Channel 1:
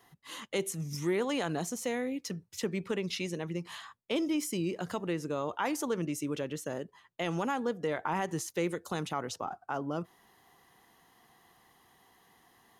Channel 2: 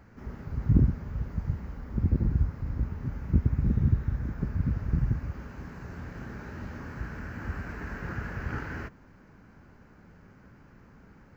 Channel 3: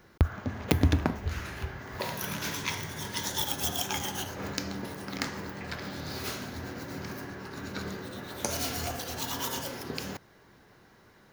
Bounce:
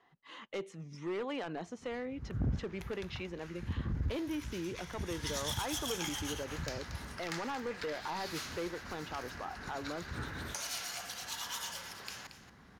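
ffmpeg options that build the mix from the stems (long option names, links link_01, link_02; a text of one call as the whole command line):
ffmpeg -i stem1.wav -i stem2.wav -i stem3.wav -filter_complex "[0:a]lowpass=2900,equalizer=frequency=67:width_type=o:width=2.8:gain=-10.5,asoftclip=type=hard:threshold=-28.5dB,volume=-3.5dB,asplit=2[link_01][link_02];[1:a]highpass=46,adelay=1650,volume=-5.5dB[link_03];[2:a]highpass=1100,asoftclip=type=tanh:threshold=-21.5dB,adelay=2100,volume=-3dB,afade=type=in:start_time=4.87:duration=0.43:silence=0.298538,asplit=2[link_04][link_05];[link_05]volume=-12dB[link_06];[link_02]apad=whole_len=574046[link_07];[link_03][link_07]sidechaincompress=threshold=-50dB:ratio=8:attack=8.8:release=159[link_08];[link_06]aecho=0:1:228:1[link_09];[link_01][link_08][link_04][link_09]amix=inputs=4:normalize=0,lowpass=11000,asoftclip=type=tanh:threshold=-26.5dB" out.wav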